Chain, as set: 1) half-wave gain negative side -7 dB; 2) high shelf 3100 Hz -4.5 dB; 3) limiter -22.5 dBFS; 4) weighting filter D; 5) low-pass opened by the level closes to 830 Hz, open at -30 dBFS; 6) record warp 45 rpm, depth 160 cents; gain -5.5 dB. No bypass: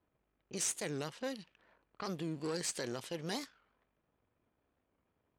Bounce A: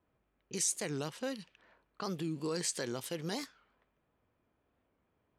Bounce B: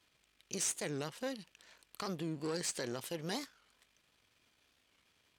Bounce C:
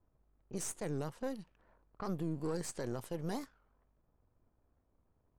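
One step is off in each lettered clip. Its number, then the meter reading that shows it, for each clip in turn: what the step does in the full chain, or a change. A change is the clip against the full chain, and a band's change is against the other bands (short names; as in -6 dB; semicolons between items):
1, distortion -8 dB; 5, momentary loudness spread change +3 LU; 4, 4 kHz band -10.5 dB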